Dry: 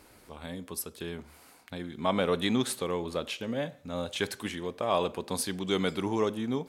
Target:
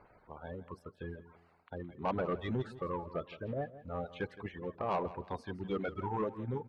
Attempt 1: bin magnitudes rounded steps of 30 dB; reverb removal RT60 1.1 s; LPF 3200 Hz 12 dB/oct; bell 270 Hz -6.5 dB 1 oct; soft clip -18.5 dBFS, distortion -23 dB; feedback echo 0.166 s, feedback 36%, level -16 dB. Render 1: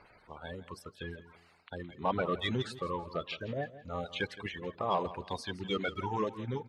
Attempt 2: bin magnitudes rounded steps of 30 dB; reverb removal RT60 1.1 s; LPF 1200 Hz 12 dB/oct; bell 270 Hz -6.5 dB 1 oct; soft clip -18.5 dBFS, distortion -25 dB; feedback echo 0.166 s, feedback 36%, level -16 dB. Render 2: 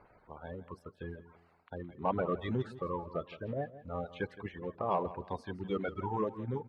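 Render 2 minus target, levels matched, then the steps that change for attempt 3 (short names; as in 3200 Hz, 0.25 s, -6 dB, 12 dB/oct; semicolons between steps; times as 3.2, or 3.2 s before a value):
soft clip: distortion -10 dB
change: soft clip -26 dBFS, distortion -15 dB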